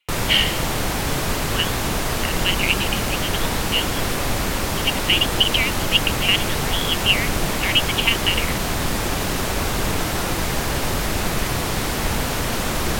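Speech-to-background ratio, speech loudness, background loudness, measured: 1.5 dB, -21.0 LUFS, -22.5 LUFS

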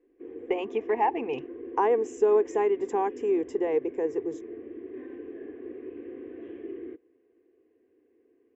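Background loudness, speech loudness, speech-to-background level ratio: -41.5 LUFS, -27.5 LUFS, 14.0 dB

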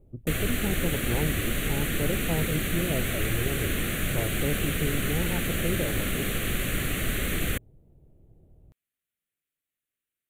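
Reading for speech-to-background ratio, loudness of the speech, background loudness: -4.5 dB, -33.0 LUFS, -28.5 LUFS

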